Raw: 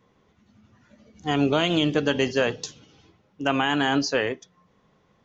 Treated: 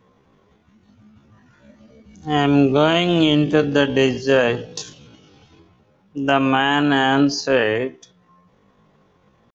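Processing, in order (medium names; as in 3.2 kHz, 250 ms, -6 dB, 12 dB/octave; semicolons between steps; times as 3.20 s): treble shelf 3.4 kHz -5 dB; band-stop 2 kHz, Q 28; tempo 0.55×; trim +6.5 dB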